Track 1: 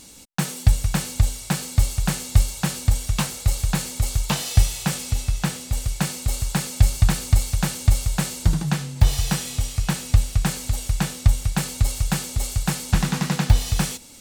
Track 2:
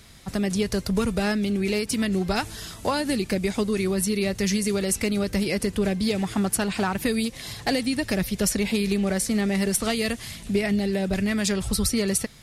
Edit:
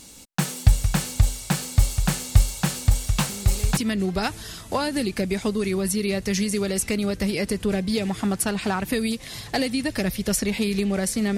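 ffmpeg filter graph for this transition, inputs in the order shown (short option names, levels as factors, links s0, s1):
-filter_complex "[1:a]asplit=2[s0][s1];[0:a]apad=whole_dur=11.37,atrim=end=11.37,atrim=end=3.772[s2];[s1]atrim=start=1.898:end=9.5[s3];[s0]atrim=start=1.42:end=1.9,asetpts=PTS-STARTPTS,volume=0.211,afade=t=in:d=0.004:c=hsin,afade=t=out:st=0.476:d=0.004:c=hsin,adelay=145089S[s4];[s2][s3]acrossfade=d=0.004:c1=hsin:c2=hsin[s5];[s5][s4]amix=inputs=2:normalize=0"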